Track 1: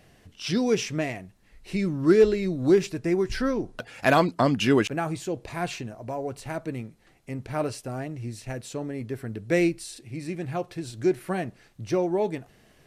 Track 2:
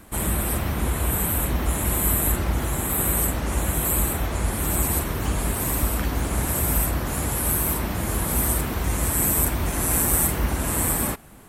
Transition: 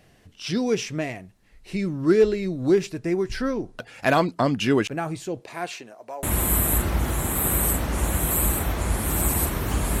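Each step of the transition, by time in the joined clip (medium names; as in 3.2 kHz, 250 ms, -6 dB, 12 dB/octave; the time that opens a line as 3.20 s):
track 1
5.41–6.23 s: high-pass 220 Hz -> 650 Hz
6.23 s: go over to track 2 from 1.77 s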